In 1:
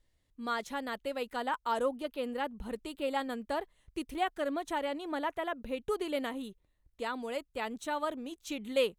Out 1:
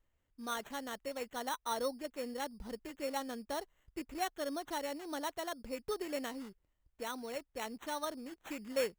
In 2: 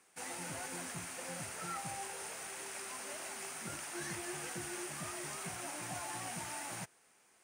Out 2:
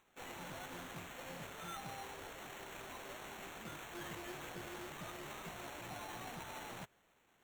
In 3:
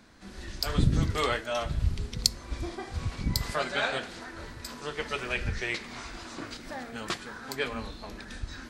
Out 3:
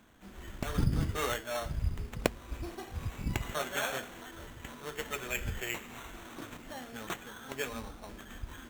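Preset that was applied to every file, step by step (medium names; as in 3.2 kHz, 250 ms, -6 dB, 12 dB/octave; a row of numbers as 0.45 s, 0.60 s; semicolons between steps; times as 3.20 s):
sample-rate reducer 4.9 kHz, jitter 0%; trim -5 dB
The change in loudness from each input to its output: -4.5 LU, -6.0 LU, -5.5 LU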